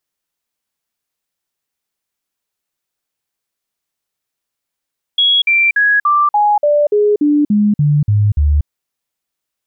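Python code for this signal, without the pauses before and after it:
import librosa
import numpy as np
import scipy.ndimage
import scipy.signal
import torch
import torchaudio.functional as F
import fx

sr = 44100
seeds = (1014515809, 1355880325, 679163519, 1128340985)

y = fx.stepped_sweep(sr, from_hz=3330.0, direction='down', per_octave=2, tones=12, dwell_s=0.24, gap_s=0.05, level_db=-8.5)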